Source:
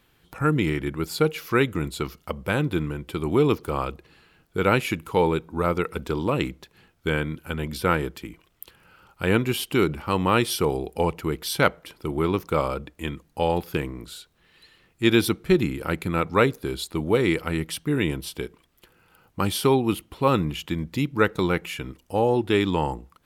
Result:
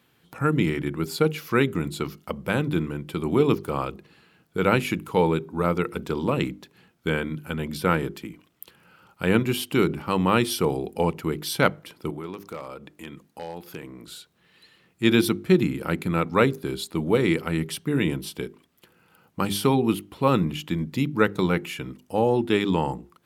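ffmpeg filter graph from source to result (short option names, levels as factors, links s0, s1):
-filter_complex "[0:a]asettb=1/sr,asplit=3[s0][s1][s2];[s0]atrim=end=12.104[s3];[s1]atrim=start=12.1:end=14.07,asetpts=PTS-STARTPTS,afade=t=in:d=0.004:c=qsin,afade=t=out:st=1.966:d=0.004:c=qsin,lowshelf=f=180:g=-8.5,acompressor=threshold=0.0112:ratio=2:attack=3.2:release=140:knee=1:detection=peak,aeval=exprs='0.0596*(abs(mod(val(0)/0.0596+3,4)-2)-1)':c=same[s4];[s2]atrim=start=14.066[s5];[s3][s4]acrossfade=d=0.004:c1=hsin:c2=qsin[s6];[s6][s5]acrossfade=d=0.004:c1=qsin:c2=hsin,highpass=97,equalizer=f=190:w=1.1:g=5,bandreject=f=50:t=h:w=6,bandreject=f=100:t=h:w=6,bandreject=f=150:t=h:w=6,bandreject=f=200:t=h:w=6,bandreject=f=250:t=h:w=6,bandreject=f=300:t=h:w=6,bandreject=f=350:t=h:w=6,bandreject=f=400:t=h:w=6,volume=0.891"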